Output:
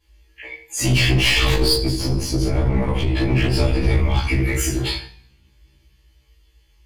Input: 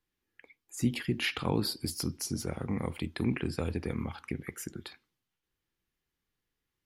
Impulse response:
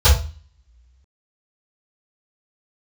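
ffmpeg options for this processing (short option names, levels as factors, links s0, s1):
-filter_complex "[0:a]equalizer=f=4600:t=o:w=1.9:g=8,bandreject=f=3800:w=5.2,aeval=exprs='(mod(5.62*val(0)+1,2)-1)/5.62':c=same[s0];[1:a]atrim=start_sample=2205,asetrate=30429,aresample=44100[s1];[s0][s1]afir=irnorm=-1:irlink=0,alimiter=limit=0.944:level=0:latency=1:release=41,asetnsamples=n=441:p=0,asendcmd='1.76 highshelf g -5;3.36 highshelf g 6.5',highshelf=f=2500:g=6.5,aeval=exprs='clip(val(0),-1,0.355)':c=same,afftfilt=real='re*1.73*eq(mod(b,3),0)':imag='im*1.73*eq(mod(b,3),0)':win_size=2048:overlap=0.75,volume=0.531"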